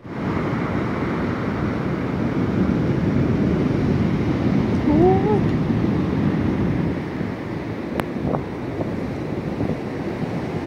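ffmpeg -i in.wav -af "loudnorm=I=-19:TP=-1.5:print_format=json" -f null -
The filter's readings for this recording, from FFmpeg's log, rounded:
"input_i" : "-22.5",
"input_tp" : "-3.2",
"input_lra" : "6.7",
"input_thresh" : "-32.5",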